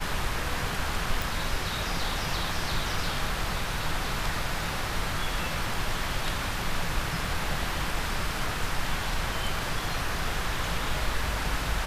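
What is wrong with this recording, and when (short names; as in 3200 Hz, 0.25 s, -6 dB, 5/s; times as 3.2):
1.22 pop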